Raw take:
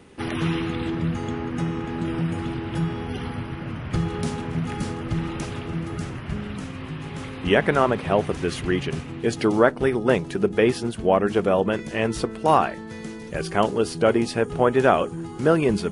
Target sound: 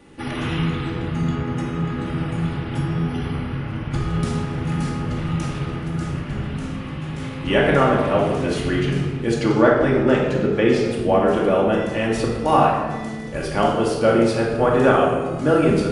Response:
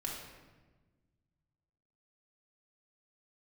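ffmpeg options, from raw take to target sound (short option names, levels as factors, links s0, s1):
-filter_complex "[0:a]asettb=1/sr,asplit=3[s0][s1][s2];[s0]atrim=end=9.344[s3];[s1]atrim=start=9.34:end=10.86,asetpts=PTS-STARTPTS,afade=t=in:d=0.004:c=qsin,afade=t=out:st=1.516:d=0.004:c=qsin,lowpass=f=7800:w=0.5412,lowpass=f=7800:w=1.3066[s4];[s2]atrim=start=10.856[s5];[s3][s4]acrossfade=d=0.004:c1=hsin:c2=qsin[s6];[s6][s5]acrossfade=d=0.004:c1=qsin:c2=hsin[s7];[1:a]atrim=start_sample=2205[s8];[s7][s8]afir=irnorm=-1:irlink=0,volume=1.19"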